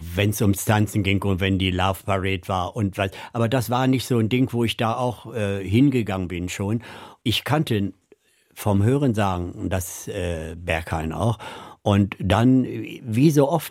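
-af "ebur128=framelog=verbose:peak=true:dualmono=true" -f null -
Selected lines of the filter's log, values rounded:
Integrated loudness:
  I:         -19.5 LUFS
  Threshold: -29.7 LUFS
Loudness range:
  LRA:         2.8 LU
  Threshold: -40.3 LUFS
  LRA low:   -21.8 LUFS
  LRA high:  -19.0 LUFS
True peak:
  Peak:       -2.9 dBFS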